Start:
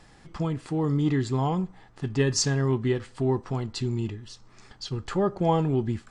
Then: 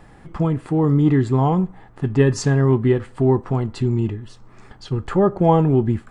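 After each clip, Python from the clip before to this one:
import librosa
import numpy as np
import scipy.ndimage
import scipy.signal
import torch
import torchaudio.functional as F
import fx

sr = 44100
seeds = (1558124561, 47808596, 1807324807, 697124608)

y = fx.peak_eq(x, sr, hz=5300.0, db=-14.5, octaves=1.8)
y = y * 10.0 ** (8.5 / 20.0)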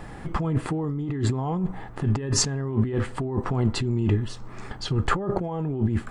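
y = fx.over_compress(x, sr, threshold_db=-25.0, ratio=-1.0)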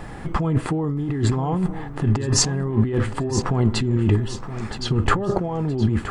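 y = fx.echo_feedback(x, sr, ms=970, feedback_pct=27, wet_db=-12)
y = y * 10.0 ** (4.0 / 20.0)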